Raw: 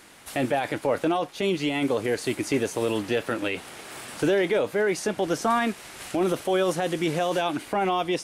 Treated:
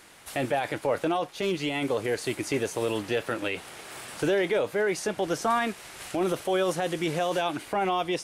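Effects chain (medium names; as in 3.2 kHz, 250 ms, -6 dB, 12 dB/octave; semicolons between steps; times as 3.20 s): peaking EQ 250 Hz -4.5 dB 0.71 oct; 1.21–2.12 s: hard clipper -18 dBFS, distortion -34 dB; trim -1.5 dB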